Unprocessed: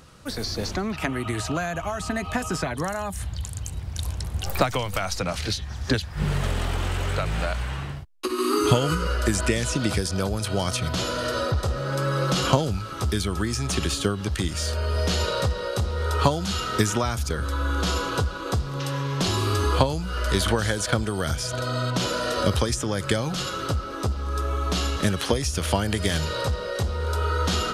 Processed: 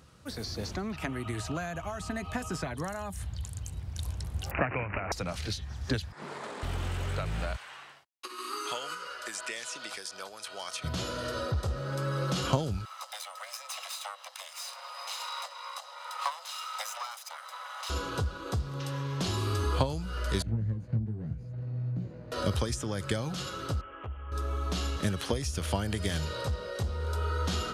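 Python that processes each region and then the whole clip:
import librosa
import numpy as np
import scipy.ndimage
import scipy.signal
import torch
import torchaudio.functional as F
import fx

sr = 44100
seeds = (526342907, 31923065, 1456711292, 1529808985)

y = fx.chain(x, sr, fx.high_shelf_res(hz=3100.0, db=10.0, q=1.5),
    fx.resample_bad(factor=8, down='none', up='filtered'), at=(4.51, 5.12))
y = fx.chain(y, sr, fx.cabinet(low_hz=260.0, low_slope=24, high_hz=8800.0, hz=(970.0, 2900.0, 5900.0), db=(6, -10, -6)),
    fx.doppler_dist(depth_ms=0.29), at=(6.12, 6.63))
y = fx.chain(y, sr, fx.highpass(hz=830.0, slope=12),
    fx.peak_eq(hz=13000.0, db=-4.5, octaves=0.81), at=(7.56, 10.84))
y = fx.chain(y, sr, fx.lower_of_two(delay_ms=0.79),
    fx.cheby1_highpass(hz=510.0, order=10),
    fx.comb(ms=1.0, depth=0.34), at=(12.85, 17.9))
y = fx.chain(y, sr, fx.lower_of_two(delay_ms=0.45),
    fx.bandpass_q(hz=140.0, q=1.3),
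    fx.doubler(ms=18.0, db=-4.5), at=(20.42, 22.32))
y = fx.chain(y, sr, fx.cheby1_lowpass(hz=3200.0, order=8),
    fx.peak_eq(hz=200.0, db=-13.0, octaves=2.6),
    fx.clip_hard(threshold_db=-23.0), at=(23.81, 24.32))
y = scipy.signal.sosfilt(scipy.signal.butter(2, 49.0, 'highpass', fs=sr, output='sos'), y)
y = fx.low_shelf(y, sr, hz=150.0, db=4.5)
y = y * 10.0 ** (-8.5 / 20.0)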